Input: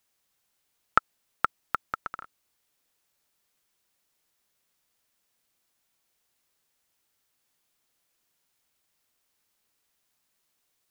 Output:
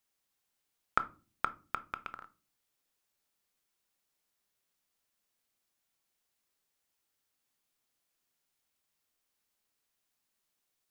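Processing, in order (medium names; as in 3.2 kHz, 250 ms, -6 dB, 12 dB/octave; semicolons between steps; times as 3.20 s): rattle on loud lows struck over -44 dBFS, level -22 dBFS; on a send: reverberation RT60 0.35 s, pre-delay 3 ms, DRR 11.5 dB; on the sum: trim -7 dB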